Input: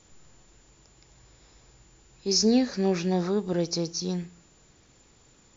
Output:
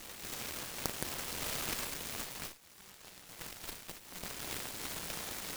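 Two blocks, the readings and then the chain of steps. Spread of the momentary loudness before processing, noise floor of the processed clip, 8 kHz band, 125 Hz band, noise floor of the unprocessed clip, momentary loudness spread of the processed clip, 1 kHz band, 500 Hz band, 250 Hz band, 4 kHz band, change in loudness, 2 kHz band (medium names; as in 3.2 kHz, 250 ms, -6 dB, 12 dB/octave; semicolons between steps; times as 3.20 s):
12 LU, -57 dBFS, no reading, -16.5 dB, -59 dBFS, 14 LU, -6.0 dB, -19.0 dB, -22.5 dB, -8.5 dB, -13.5 dB, +1.5 dB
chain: FFT band-pass 1.6–6.4 kHz; tilt EQ -1.5 dB/octave; in parallel at +1.5 dB: peak limiter -42.5 dBFS, peak gain reduction 25 dB; on the sum: compressor with a negative ratio -57 dBFS, ratio -1; flange 0.43 Hz, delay 3.6 ms, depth 3.9 ms, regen -40%; flutter echo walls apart 6.6 m, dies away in 0.25 s; gated-style reverb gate 300 ms rising, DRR -2 dB; Chebyshev shaper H 3 -8 dB, 4 -6 dB, 7 -43 dB, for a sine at -30.5 dBFS; delay time shaken by noise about 1.5 kHz, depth 0.26 ms; trim +14.5 dB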